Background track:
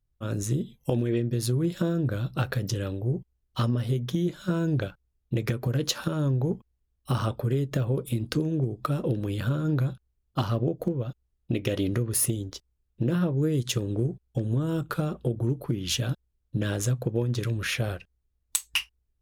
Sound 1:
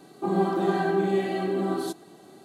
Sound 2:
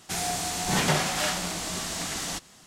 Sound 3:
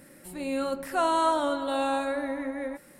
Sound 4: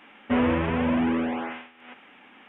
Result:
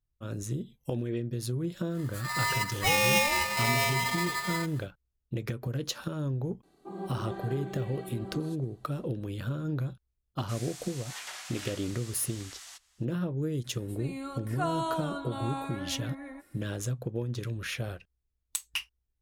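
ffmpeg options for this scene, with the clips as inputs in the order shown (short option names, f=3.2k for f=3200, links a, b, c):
-filter_complex "[3:a]asplit=2[a][b];[0:a]volume=-6.5dB[c];[a]aeval=exprs='val(0)*sgn(sin(2*PI*1500*n/s))':c=same[d];[2:a]highpass=1.2k[e];[b]aecho=1:1:2.8:0.61[f];[d]atrim=end=2.99,asetpts=PTS-STARTPTS,volume=-0.5dB,afade=t=in:d=0.1,afade=t=out:st=2.89:d=0.1,adelay=1890[g];[1:a]atrim=end=2.44,asetpts=PTS-STARTPTS,volume=-15dB,afade=t=in:d=0.004:c=hsin,afade=t=out:st=2.436:d=0.004:c=hsin,adelay=6630[h];[e]atrim=end=2.66,asetpts=PTS-STARTPTS,volume=-14dB,afade=t=in:d=0.004:c=hsin,afade=t=out:st=2.656:d=0.004:c=hsin,adelay=10390[i];[f]atrim=end=2.99,asetpts=PTS-STARTPTS,volume=-9dB,afade=t=in:d=0.004:c=hsin,afade=t=out:st=2.986:d=0.004:c=hsin,adelay=601524S[j];[c][g][h][i][j]amix=inputs=5:normalize=0"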